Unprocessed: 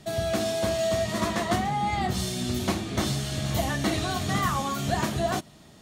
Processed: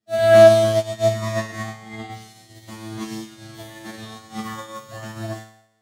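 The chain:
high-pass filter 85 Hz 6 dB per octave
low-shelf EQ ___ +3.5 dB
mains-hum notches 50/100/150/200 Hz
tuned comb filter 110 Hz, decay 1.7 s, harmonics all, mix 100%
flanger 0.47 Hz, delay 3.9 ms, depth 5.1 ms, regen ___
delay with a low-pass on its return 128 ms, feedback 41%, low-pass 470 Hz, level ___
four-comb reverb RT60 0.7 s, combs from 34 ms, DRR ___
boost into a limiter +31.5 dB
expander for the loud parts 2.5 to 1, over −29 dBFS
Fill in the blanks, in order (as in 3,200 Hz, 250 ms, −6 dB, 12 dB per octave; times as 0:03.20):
220 Hz, +67%, −24 dB, 19 dB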